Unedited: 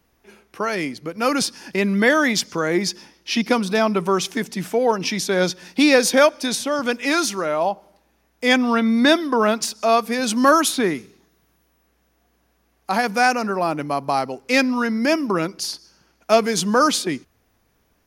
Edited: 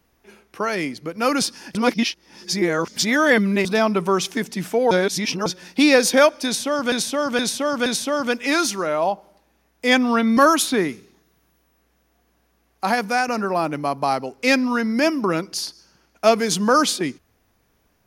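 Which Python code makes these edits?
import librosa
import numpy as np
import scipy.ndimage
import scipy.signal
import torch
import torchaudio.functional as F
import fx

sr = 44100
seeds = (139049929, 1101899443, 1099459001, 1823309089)

y = fx.edit(x, sr, fx.reverse_span(start_s=1.75, length_s=1.9),
    fx.reverse_span(start_s=4.91, length_s=0.55),
    fx.repeat(start_s=6.45, length_s=0.47, count=4),
    fx.cut(start_s=8.96, length_s=1.47),
    fx.fade_out_to(start_s=13.0, length_s=0.34, floor_db=-6.0), tone=tone)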